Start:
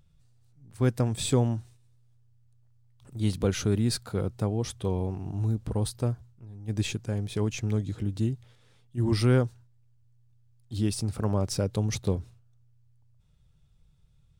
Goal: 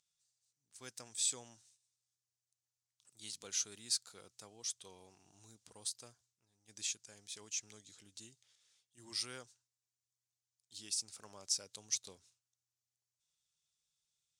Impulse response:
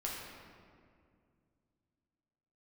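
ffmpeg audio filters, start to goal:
-af "bandpass=f=6600:t=q:w=1.9:csg=0,volume=1.33"

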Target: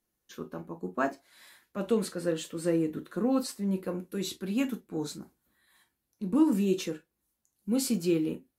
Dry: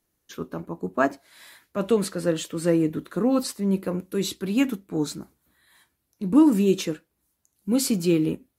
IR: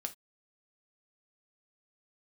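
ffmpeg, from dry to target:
-filter_complex "[1:a]atrim=start_sample=2205,atrim=end_sample=3087,asetrate=52920,aresample=44100[s0];[0:a][s0]afir=irnorm=-1:irlink=0,volume=0.668"

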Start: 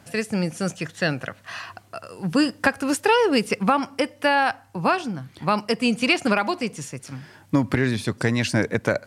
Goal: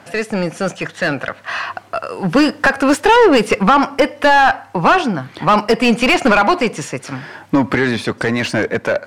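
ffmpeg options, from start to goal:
-filter_complex "[0:a]asplit=2[s0][s1];[s1]highpass=f=720:p=1,volume=14.1,asoftclip=type=tanh:threshold=0.668[s2];[s0][s2]amix=inputs=2:normalize=0,lowpass=f=1400:p=1,volume=0.501,dynaudnorm=f=210:g=17:m=3.76,volume=0.891"

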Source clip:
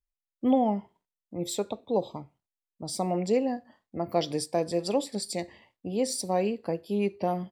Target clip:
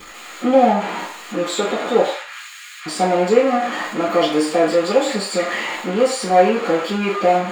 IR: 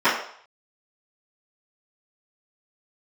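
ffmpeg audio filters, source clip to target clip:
-filter_complex "[0:a]aeval=exprs='val(0)+0.5*0.0376*sgn(val(0))':c=same,asettb=1/sr,asplit=3[s0][s1][s2];[s0]atrim=end=2.084[s3];[s1]atrim=start=2.08:end=2.86,asetpts=PTS-STARTPTS,afade=t=in:d=0.004:c=qsin,afade=t=out:st=0.776:d=0.004:c=qsin,highpass=f=1500:w=0.5412,highpass=f=1500:w=1.3066[s4];[s2]atrim=start=2.856[s5];[s3][s4]acrossfade=d=0.004:c1=hsin:c2=qsin[s6];[s6][s5]acrossfade=d=0.004:c1=qsin:c2=hsin[s7];[1:a]atrim=start_sample=2205,asetrate=57330,aresample=44100[s8];[s7][s8]afir=irnorm=-1:irlink=0,volume=0.422"

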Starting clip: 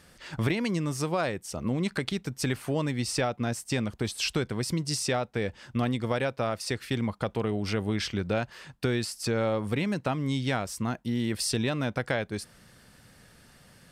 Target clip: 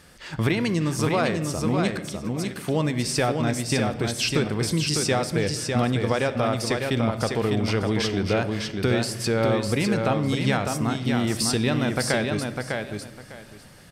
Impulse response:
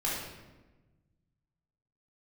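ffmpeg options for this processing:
-filter_complex "[0:a]asettb=1/sr,asplit=3[s0][s1][s2];[s0]atrim=end=1.944[s3];[s1]atrim=start=1.94:end=2.56,asetpts=PTS-STARTPTS,afade=t=in:d=0.004:c=qsin,afade=t=out:st=0.616:d=0.004:c=qsin,acompressor=threshold=0.0126:ratio=10[s4];[s2]atrim=start=2.556[s5];[s3][s4]acrossfade=d=0.004:c1=hsin:c2=qsin[s6];[s6][s5]acrossfade=d=0.004:c1=qsin:c2=hsin,aecho=1:1:602|1204|1806:0.596|0.119|0.0238,asplit=2[s7][s8];[1:a]atrim=start_sample=2205[s9];[s8][s9]afir=irnorm=-1:irlink=0,volume=0.133[s10];[s7][s10]amix=inputs=2:normalize=0,volume=1.5"

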